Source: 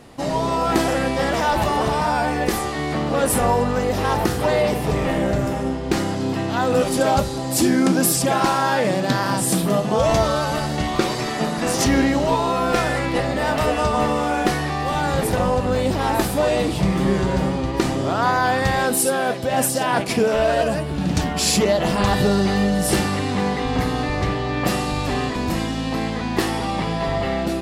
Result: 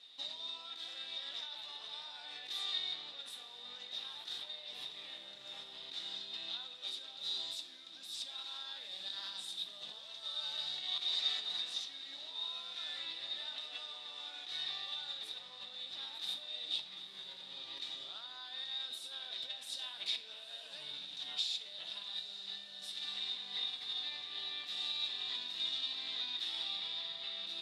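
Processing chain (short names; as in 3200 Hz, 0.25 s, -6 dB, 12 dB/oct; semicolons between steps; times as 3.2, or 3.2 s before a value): negative-ratio compressor -25 dBFS, ratio -1; band-pass 3700 Hz, Q 18; diffused feedback echo 0.889 s, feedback 75%, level -15 dB; shoebox room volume 260 m³, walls mixed, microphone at 0.39 m; gain +5.5 dB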